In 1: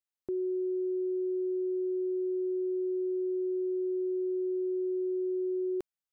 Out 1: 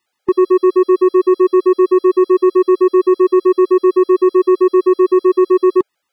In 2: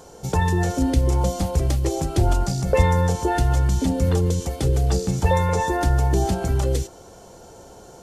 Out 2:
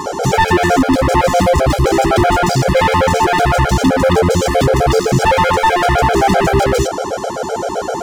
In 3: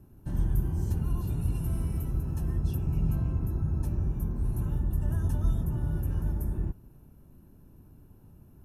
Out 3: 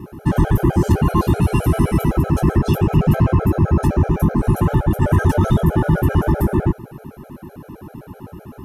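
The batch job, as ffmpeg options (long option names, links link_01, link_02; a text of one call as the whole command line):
ffmpeg -i in.wav -filter_complex "[0:a]asplit=2[link_01][link_02];[link_02]highpass=frequency=720:poles=1,volume=37dB,asoftclip=type=tanh:threshold=-2.5dB[link_03];[link_01][link_03]amix=inputs=2:normalize=0,lowpass=frequency=1400:poles=1,volume=-6dB,volume=11dB,asoftclip=hard,volume=-11dB,afftfilt=real='re*gt(sin(2*PI*7.8*pts/sr)*(1-2*mod(floor(b*sr/1024/420),2)),0)':imag='im*gt(sin(2*PI*7.8*pts/sr)*(1-2*mod(floor(b*sr/1024/420),2)),0)':win_size=1024:overlap=0.75,volume=4dB" out.wav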